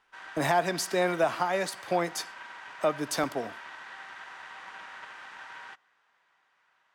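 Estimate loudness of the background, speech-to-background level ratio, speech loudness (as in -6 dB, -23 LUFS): -44.0 LUFS, 14.5 dB, -29.5 LUFS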